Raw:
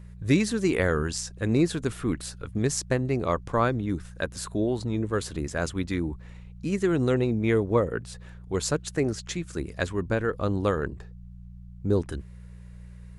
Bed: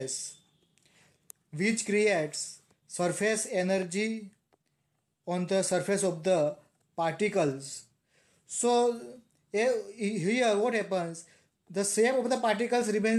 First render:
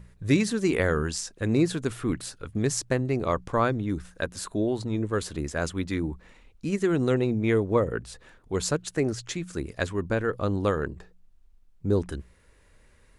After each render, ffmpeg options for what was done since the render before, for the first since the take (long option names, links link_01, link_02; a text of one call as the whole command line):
ffmpeg -i in.wav -af "bandreject=frequency=60:width_type=h:width=4,bandreject=frequency=120:width_type=h:width=4,bandreject=frequency=180:width_type=h:width=4" out.wav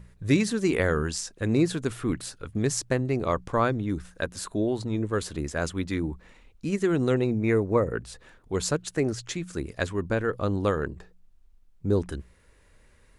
ffmpeg -i in.wav -filter_complex "[0:a]asettb=1/sr,asplit=3[link_01][link_02][link_03];[link_01]atrim=end=7.244[link_04];[link_02]atrim=start=7.24:end=7.95,asetpts=PTS-STARTPTS,afade=type=in:duration=0.004:curve=qsin,afade=type=out:start_time=0.706:duration=0.004:curve=qsin,asuperstop=centerf=3200:order=4:qfactor=3.1[link_05];[link_03]atrim=start=7.946[link_06];[link_04][link_05]acrossfade=duration=0.004:curve1=hsin:curve2=qsin[link_07];[link_07][link_06]acrossfade=duration=0.004:curve1=qsin:curve2=hsin" out.wav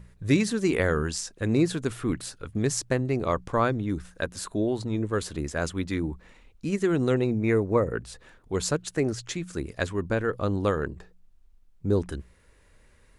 ffmpeg -i in.wav -af anull out.wav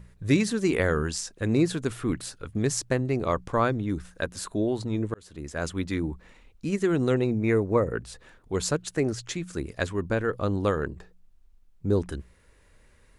ffmpeg -i in.wav -filter_complex "[0:a]asplit=2[link_01][link_02];[link_01]atrim=end=5.14,asetpts=PTS-STARTPTS,afade=type=out:start_time=5.136:duration=0.004:curve=hsin[link_03];[link_02]atrim=start=5.14,asetpts=PTS-STARTPTS,afade=type=in:duration=0.6[link_04];[link_03][link_04]concat=n=2:v=0:a=1" out.wav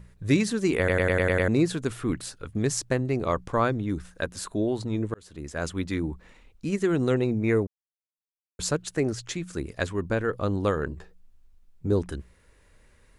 ffmpeg -i in.wav -filter_complex "[0:a]asettb=1/sr,asplit=3[link_01][link_02][link_03];[link_01]atrim=end=10.864[link_04];[link_02]atrim=start=10.86:end=11.92,asetpts=PTS-STARTPTS,afade=type=in:duration=0.004:curve=qsin,afade=type=out:start_time=1.056:duration=0.004:curve=qsin,asplit=2[link_05][link_06];[link_06]adelay=13,volume=-5dB[link_07];[link_05][link_07]amix=inputs=2:normalize=0,atrim=end_sample=46746[link_08];[link_03]atrim=start=11.916[link_09];[link_04][link_08]acrossfade=duration=0.004:curve1=hsin:curve2=qsin[link_10];[link_10][link_09]acrossfade=duration=0.004:curve1=qsin:curve2=hsin,asplit=10[link_11][link_12][link_13][link_14][link_15][link_16][link_17][link_18][link_19][link_20];[link_11]atrim=end=0.882[link_21];[link_12]atrim=start=0.778:end=0.882[link_22];[link_13]atrim=start=0.778:end=0.882[link_23];[link_14]atrim=start=0.778:end=0.882[link_24];[link_15]atrim=start=0.778:end=0.882[link_25];[link_16]atrim=start=0.778:end=0.882[link_26];[link_17]atrim=start=0.778:end=0.882[link_27];[link_18]atrim=start=1.478:end=7.67,asetpts=PTS-STARTPTS,afade=type=out:start_time=6.188:duration=0.004:curve=hsin[link_28];[link_19]atrim=start=7.67:end=8.59,asetpts=PTS-STARTPTS,volume=0[link_29];[link_20]atrim=start=8.59,asetpts=PTS-STARTPTS,afade=type=in:duration=0.004:curve=hsin[link_30];[link_21][link_22]acrossfade=duration=0.004:curve1=hsin:curve2=hsin[link_31];[link_31][link_23]acrossfade=duration=0.004:curve1=hsin:curve2=hsin[link_32];[link_32][link_24]acrossfade=duration=0.004:curve1=hsin:curve2=hsin[link_33];[link_33][link_25]acrossfade=duration=0.004:curve1=hsin:curve2=hsin[link_34];[link_34][link_26]acrossfade=duration=0.004:curve1=hsin:curve2=hsin[link_35];[link_35][link_27]acrossfade=duration=0.004:curve1=hsin:curve2=hsin[link_36];[link_28][link_29][link_30]concat=n=3:v=0:a=1[link_37];[link_36][link_37]acrossfade=duration=0.004:curve1=hsin:curve2=hsin" out.wav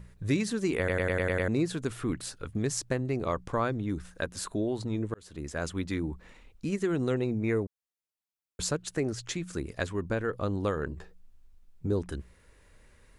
ffmpeg -i in.wav -af "acompressor=threshold=-33dB:ratio=1.5" out.wav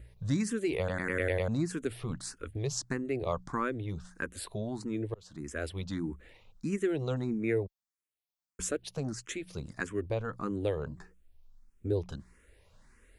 ffmpeg -i in.wav -filter_complex "[0:a]asplit=2[link_01][link_02];[link_02]afreqshift=1.6[link_03];[link_01][link_03]amix=inputs=2:normalize=1" out.wav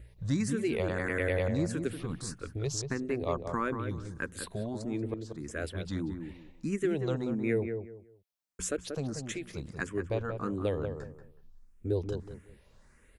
ffmpeg -i in.wav -filter_complex "[0:a]asplit=2[link_01][link_02];[link_02]adelay=185,lowpass=frequency=1400:poles=1,volume=-6dB,asplit=2[link_03][link_04];[link_04]adelay=185,lowpass=frequency=1400:poles=1,volume=0.26,asplit=2[link_05][link_06];[link_06]adelay=185,lowpass=frequency=1400:poles=1,volume=0.26[link_07];[link_01][link_03][link_05][link_07]amix=inputs=4:normalize=0" out.wav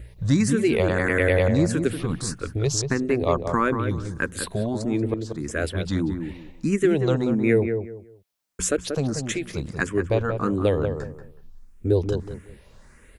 ffmpeg -i in.wav -af "volume=10dB" out.wav